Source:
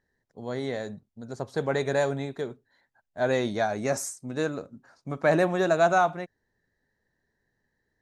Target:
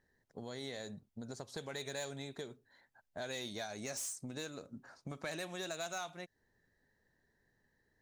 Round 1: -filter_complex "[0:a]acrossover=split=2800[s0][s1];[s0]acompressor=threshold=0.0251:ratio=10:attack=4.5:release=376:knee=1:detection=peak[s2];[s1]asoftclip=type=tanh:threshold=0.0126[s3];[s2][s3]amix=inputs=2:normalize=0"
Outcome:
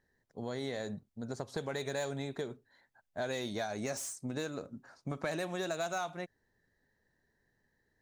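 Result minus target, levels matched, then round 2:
compression: peak gain reduction -7 dB
-filter_complex "[0:a]acrossover=split=2800[s0][s1];[s0]acompressor=threshold=0.01:ratio=10:attack=4.5:release=376:knee=1:detection=peak[s2];[s1]asoftclip=type=tanh:threshold=0.0126[s3];[s2][s3]amix=inputs=2:normalize=0"

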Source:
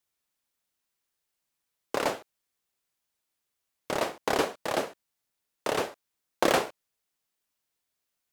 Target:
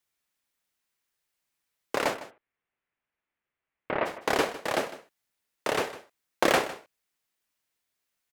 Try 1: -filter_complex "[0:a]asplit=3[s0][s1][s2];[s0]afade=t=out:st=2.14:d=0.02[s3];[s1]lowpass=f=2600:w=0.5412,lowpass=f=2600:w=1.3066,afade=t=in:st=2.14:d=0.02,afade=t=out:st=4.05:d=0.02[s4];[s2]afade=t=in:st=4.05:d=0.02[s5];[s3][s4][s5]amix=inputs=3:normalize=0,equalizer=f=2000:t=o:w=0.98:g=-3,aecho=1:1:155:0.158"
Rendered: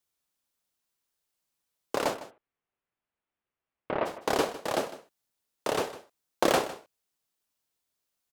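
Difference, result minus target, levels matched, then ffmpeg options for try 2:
2 kHz band -4.0 dB
-filter_complex "[0:a]asplit=3[s0][s1][s2];[s0]afade=t=out:st=2.14:d=0.02[s3];[s1]lowpass=f=2600:w=0.5412,lowpass=f=2600:w=1.3066,afade=t=in:st=2.14:d=0.02,afade=t=out:st=4.05:d=0.02[s4];[s2]afade=t=in:st=4.05:d=0.02[s5];[s3][s4][s5]amix=inputs=3:normalize=0,equalizer=f=2000:t=o:w=0.98:g=4,aecho=1:1:155:0.158"

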